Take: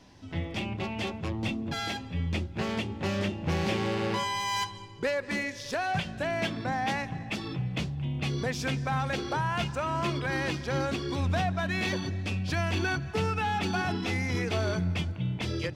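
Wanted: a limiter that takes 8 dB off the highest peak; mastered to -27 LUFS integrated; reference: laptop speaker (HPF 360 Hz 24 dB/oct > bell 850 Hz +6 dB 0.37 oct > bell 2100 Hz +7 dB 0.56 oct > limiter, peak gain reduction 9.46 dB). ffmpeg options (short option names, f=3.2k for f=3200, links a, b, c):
-af "alimiter=level_in=4dB:limit=-24dB:level=0:latency=1,volume=-4dB,highpass=f=360:w=0.5412,highpass=f=360:w=1.3066,equalizer=f=850:t=o:w=0.37:g=6,equalizer=f=2.1k:t=o:w=0.56:g=7,volume=13dB,alimiter=limit=-19dB:level=0:latency=1"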